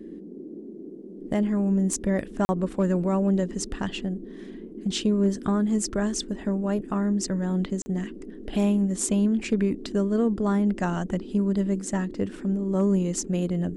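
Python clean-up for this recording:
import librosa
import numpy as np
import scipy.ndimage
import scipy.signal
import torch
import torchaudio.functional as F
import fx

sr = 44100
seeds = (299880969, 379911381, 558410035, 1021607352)

y = fx.fix_declip(x, sr, threshold_db=-14.0)
y = fx.fix_interpolate(y, sr, at_s=(2.45, 7.82), length_ms=40.0)
y = fx.noise_reduce(y, sr, print_start_s=0.71, print_end_s=1.21, reduce_db=30.0)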